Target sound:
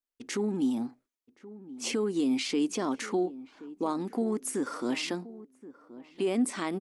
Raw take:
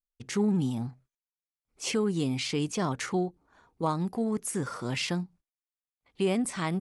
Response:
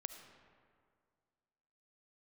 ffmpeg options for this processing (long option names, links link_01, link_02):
-filter_complex "[0:a]alimiter=limit=-22.5dB:level=0:latency=1:release=139,lowshelf=frequency=190:width_type=q:width=3:gain=-12,asplit=2[link_01][link_02];[link_02]adelay=1076,lowpass=frequency=840:poles=1,volume=-16dB,asplit=2[link_03][link_04];[link_04]adelay=1076,lowpass=frequency=840:poles=1,volume=0.29,asplit=2[link_05][link_06];[link_06]adelay=1076,lowpass=frequency=840:poles=1,volume=0.29[link_07];[link_01][link_03][link_05][link_07]amix=inputs=4:normalize=0"